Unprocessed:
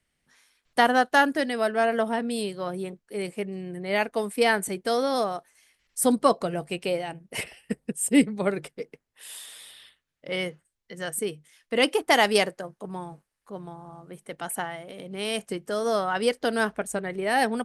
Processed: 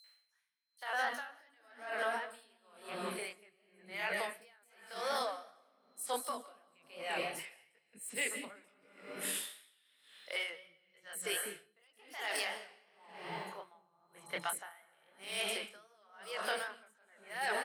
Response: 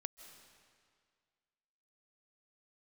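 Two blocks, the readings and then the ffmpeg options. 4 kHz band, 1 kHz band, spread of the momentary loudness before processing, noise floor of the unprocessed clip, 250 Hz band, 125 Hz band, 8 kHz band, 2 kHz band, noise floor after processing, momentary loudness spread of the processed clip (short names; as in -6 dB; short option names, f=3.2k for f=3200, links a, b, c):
-10.5 dB, -14.5 dB, 19 LU, -80 dBFS, -25.5 dB, -21.0 dB, -9.0 dB, -11.0 dB, -73 dBFS, 20 LU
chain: -filter_complex "[1:a]atrim=start_sample=2205[a];[0:a][a]afir=irnorm=-1:irlink=0,asplit=2[b][c];[c]adynamicsmooth=sensitivity=7:basefreq=6k,volume=-1dB[d];[b][d]amix=inputs=2:normalize=0,aemphasis=mode=production:type=riaa,flanger=delay=18.5:depth=6.8:speed=2.7,areverse,acompressor=threshold=-36dB:ratio=4,areverse,equalizer=f=1.5k:w=0.43:g=9,acrossover=split=360|5600[e][f][g];[f]adelay=40[h];[e]adelay=240[i];[i][h][g]amix=inputs=3:normalize=0,aeval=exprs='val(0)+0.000794*sin(2*PI*4100*n/s)':c=same,alimiter=level_in=2.5dB:limit=-24dB:level=0:latency=1:release=39,volume=-2.5dB,aeval=exprs='val(0)*pow(10,-34*(0.5-0.5*cos(2*PI*0.97*n/s))/20)':c=same,volume=2dB"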